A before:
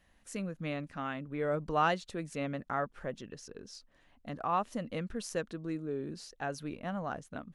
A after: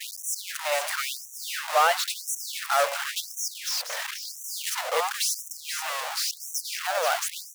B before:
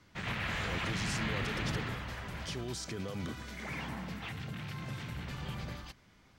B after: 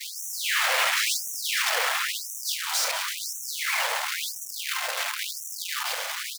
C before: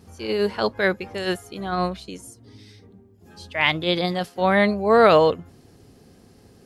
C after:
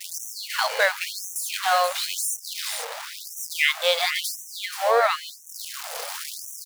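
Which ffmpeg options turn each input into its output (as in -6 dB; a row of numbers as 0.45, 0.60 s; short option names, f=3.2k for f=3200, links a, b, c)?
-af "aeval=exprs='val(0)+0.5*0.075*sgn(val(0))':c=same,acompressor=threshold=-22dB:ratio=6,agate=range=-33dB:threshold=-24dB:ratio=3:detection=peak,aecho=1:1:480:0.355,afftfilt=real='re*gte(b*sr/1024,440*pow(5700/440,0.5+0.5*sin(2*PI*0.96*pts/sr)))':imag='im*gte(b*sr/1024,440*pow(5700/440,0.5+0.5*sin(2*PI*0.96*pts/sr)))':win_size=1024:overlap=0.75,volume=7dB"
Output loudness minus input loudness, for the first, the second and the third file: +9.0, +12.0, -4.0 LU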